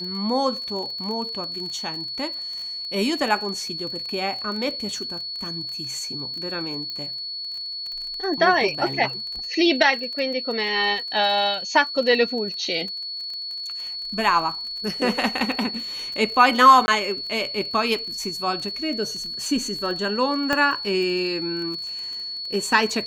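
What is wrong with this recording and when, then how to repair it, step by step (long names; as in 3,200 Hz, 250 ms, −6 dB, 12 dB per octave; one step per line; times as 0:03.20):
surface crackle 28 per second −30 dBFS
whistle 4,400 Hz −29 dBFS
0:06.90: click −19 dBFS
0:16.86–0:16.88: drop-out 20 ms
0:20.53: click −8 dBFS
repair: click removal
notch filter 4,400 Hz, Q 30
repair the gap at 0:16.86, 20 ms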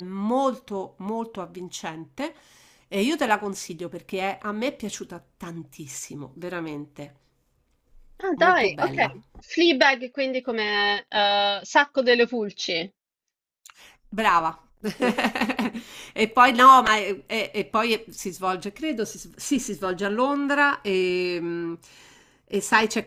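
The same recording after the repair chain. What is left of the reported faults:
none of them is left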